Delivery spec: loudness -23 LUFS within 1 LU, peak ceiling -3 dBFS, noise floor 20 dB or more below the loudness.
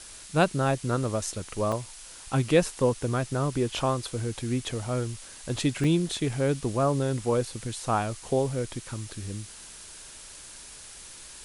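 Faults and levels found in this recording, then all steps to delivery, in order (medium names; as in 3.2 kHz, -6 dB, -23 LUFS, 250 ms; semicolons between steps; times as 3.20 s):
dropouts 2; longest dropout 3.5 ms; noise floor -46 dBFS; noise floor target -48 dBFS; loudness -28.0 LUFS; peak level -10.0 dBFS; loudness target -23.0 LUFS
-> interpolate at 1.72/5.84 s, 3.5 ms; noise reduction 6 dB, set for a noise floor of -46 dBFS; trim +5 dB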